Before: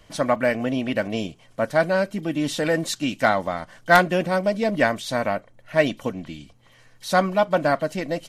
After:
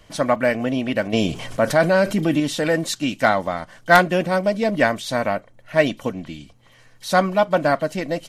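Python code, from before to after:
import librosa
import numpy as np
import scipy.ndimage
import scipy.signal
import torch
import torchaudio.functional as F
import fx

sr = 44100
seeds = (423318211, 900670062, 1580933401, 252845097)

y = fx.env_flatten(x, sr, amount_pct=50, at=(1.13, 2.4))
y = y * librosa.db_to_amplitude(2.0)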